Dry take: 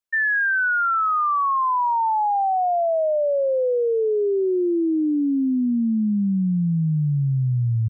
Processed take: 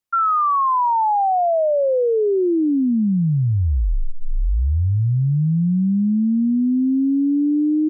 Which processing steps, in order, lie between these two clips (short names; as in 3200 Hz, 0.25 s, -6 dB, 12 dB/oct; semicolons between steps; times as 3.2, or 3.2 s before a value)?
frequency shift -420 Hz; gain +3 dB